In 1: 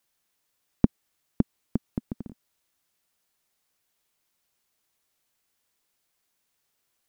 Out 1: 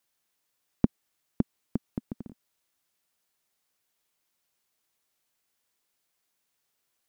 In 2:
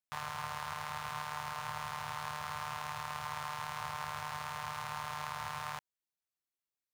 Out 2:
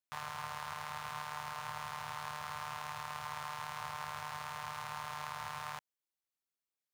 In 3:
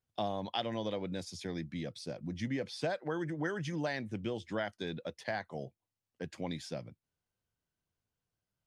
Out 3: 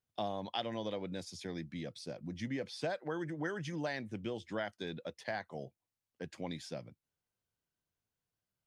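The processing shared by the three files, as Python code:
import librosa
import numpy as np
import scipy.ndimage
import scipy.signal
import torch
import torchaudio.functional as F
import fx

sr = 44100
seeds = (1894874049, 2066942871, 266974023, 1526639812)

y = fx.low_shelf(x, sr, hz=110.0, db=-4.5)
y = y * 10.0 ** (-2.0 / 20.0)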